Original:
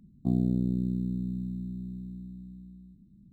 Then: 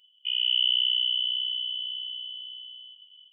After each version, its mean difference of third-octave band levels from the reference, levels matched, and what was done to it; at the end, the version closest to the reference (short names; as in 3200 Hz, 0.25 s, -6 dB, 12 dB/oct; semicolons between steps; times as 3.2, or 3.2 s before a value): 13.0 dB: HPF 240 Hz 6 dB/oct; low shelf 360 Hz -3.5 dB; AGC gain up to 10.5 dB; inverted band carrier 3200 Hz; gain +1 dB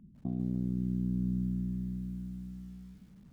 3.5 dB: limiter -25 dBFS, peak gain reduction 9.5 dB; air absorption 120 m; downsampling 8000 Hz; lo-fi delay 0.145 s, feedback 55%, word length 10-bit, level -10 dB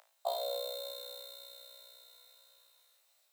22.0 dB: steep high-pass 570 Hz 72 dB/oct; AGC gain up to 3.5 dB; flutter echo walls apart 3.1 m, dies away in 0.4 s; gain +17 dB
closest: second